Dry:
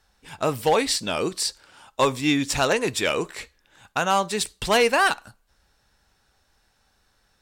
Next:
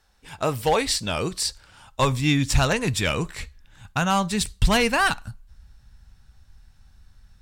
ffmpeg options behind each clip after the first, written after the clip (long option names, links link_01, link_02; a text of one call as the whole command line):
ffmpeg -i in.wav -af "asubboost=boost=11.5:cutoff=130" out.wav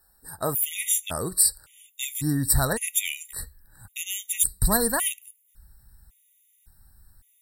ffmpeg -i in.wav -af "aexciter=amount=15.1:drive=3.7:freq=8300,afftfilt=real='re*gt(sin(2*PI*0.9*pts/sr)*(1-2*mod(floor(b*sr/1024/1900),2)),0)':imag='im*gt(sin(2*PI*0.9*pts/sr)*(1-2*mod(floor(b*sr/1024/1900),2)),0)':win_size=1024:overlap=0.75,volume=-3.5dB" out.wav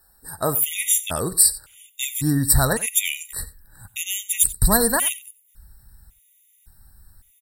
ffmpeg -i in.wav -af "aecho=1:1:90:0.126,volume=4.5dB" out.wav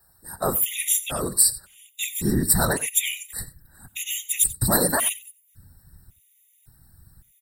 ffmpeg -i in.wav -filter_complex "[0:a]acrossover=split=110[link_01][link_02];[link_01]alimiter=limit=-17dB:level=0:latency=1:release=408[link_03];[link_03][link_02]amix=inputs=2:normalize=0,afftfilt=real='hypot(re,im)*cos(2*PI*random(0))':imag='hypot(re,im)*sin(2*PI*random(1))':win_size=512:overlap=0.75,volume=4dB" out.wav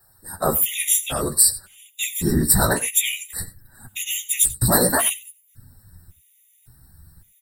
ffmpeg -i in.wav -af "flanger=delay=7.8:depth=9.5:regen=14:speed=0.53:shape=triangular,volume=6.5dB" out.wav